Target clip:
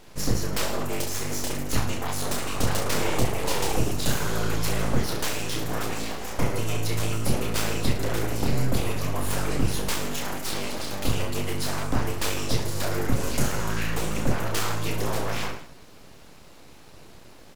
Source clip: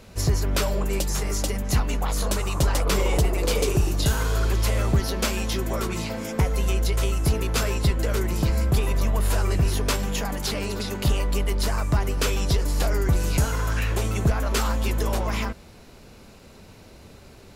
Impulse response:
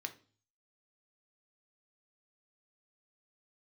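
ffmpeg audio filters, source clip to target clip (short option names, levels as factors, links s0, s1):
-filter_complex "[0:a]asplit=2[s0][s1];[s1]aecho=0:1:30|66|109.2|161|223.2:0.631|0.398|0.251|0.158|0.1[s2];[s0][s2]amix=inputs=2:normalize=0,aeval=exprs='abs(val(0))':c=same,volume=0.841"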